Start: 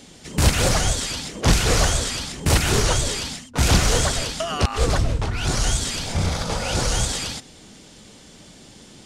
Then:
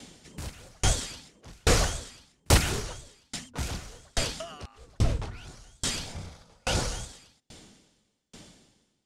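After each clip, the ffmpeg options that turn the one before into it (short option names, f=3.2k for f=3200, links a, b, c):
-af "aeval=exprs='val(0)*pow(10,-40*if(lt(mod(1.2*n/s,1),2*abs(1.2)/1000),1-mod(1.2*n/s,1)/(2*abs(1.2)/1000),(mod(1.2*n/s,1)-2*abs(1.2)/1000)/(1-2*abs(1.2)/1000))/20)':c=same"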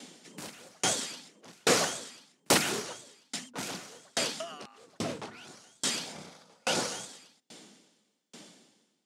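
-af "highpass=f=190:w=0.5412,highpass=f=190:w=1.3066"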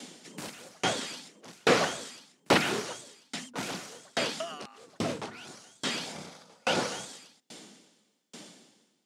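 -filter_complex "[0:a]acrossover=split=4000[a][b];[b]acompressor=threshold=-43dB:ratio=4:attack=1:release=60[c];[a][c]amix=inputs=2:normalize=0,volume=3dB"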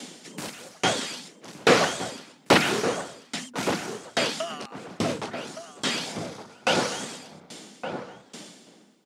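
-filter_complex "[0:a]asplit=2[a][b];[b]adelay=1166,volume=-8dB,highshelf=f=4k:g=-26.2[c];[a][c]amix=inputs=2:normalize=0,volume=5dB"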